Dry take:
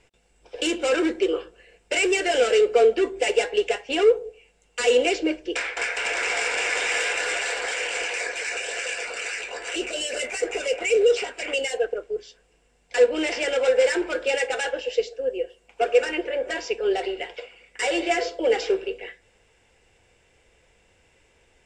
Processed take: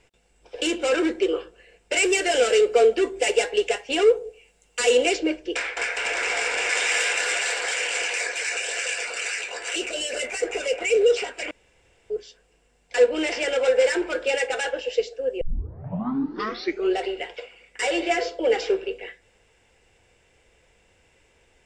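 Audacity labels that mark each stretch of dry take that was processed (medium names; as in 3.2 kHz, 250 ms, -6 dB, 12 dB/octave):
1.970000	5.170000	treble shelf 6.5 kHz +8 dB
6.690000	9.890000	tilt EQ +1.5 dB/octave
11.510000	12.100000	room tone
15.410000	15.410000	tape start 1.57 s
17.910000	18.910000	Bessel low-pass 8.7 kHz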